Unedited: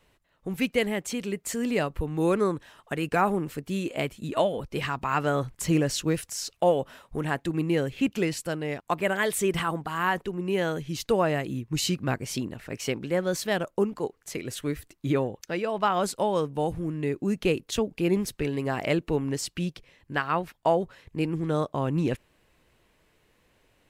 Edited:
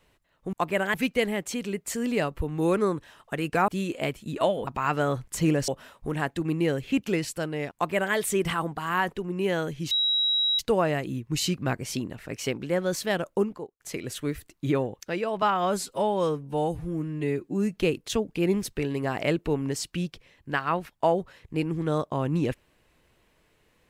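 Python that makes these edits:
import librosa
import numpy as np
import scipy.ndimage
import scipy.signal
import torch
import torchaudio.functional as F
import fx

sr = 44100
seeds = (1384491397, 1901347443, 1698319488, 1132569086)

y = fx.studio_fade_out(x, sr, start_s=13.83, length_s=0.38)
y = fx.edit(y, sr, fx.cut(start_s=3.27, length_s=0.37),
    fx.cut(start_s=4.63, length_s=0.31),
    fx.cut(start_s=5.95, length_s=0.82),
    fx.duplicate(start_s=8.83, length_s=0.41, to_s=0.53),
    fx.insert_tone(at_s=11.0, length_s=0.68, hz=3860.0, db=-21.0),
    fx.stretch_span(start_s=15.83, length_s=1.57, factor=1.5), tone=tone)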